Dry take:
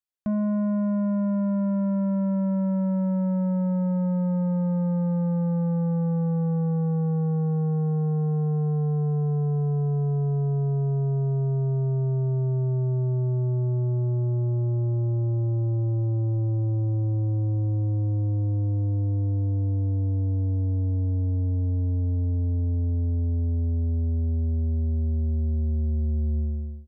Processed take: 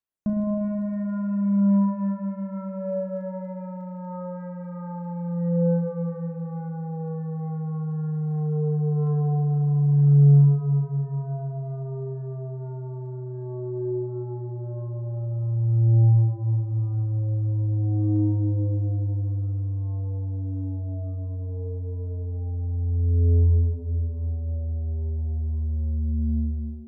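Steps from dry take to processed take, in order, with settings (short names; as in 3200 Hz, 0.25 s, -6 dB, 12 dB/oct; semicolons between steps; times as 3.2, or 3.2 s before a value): phaser 0.11 Hz, delay 2.6 ms, feedback 63%; spring tank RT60 2.7 s, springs 35 ms, chirp 30 ms, DRR 0.5 dB; gain -5.5 dB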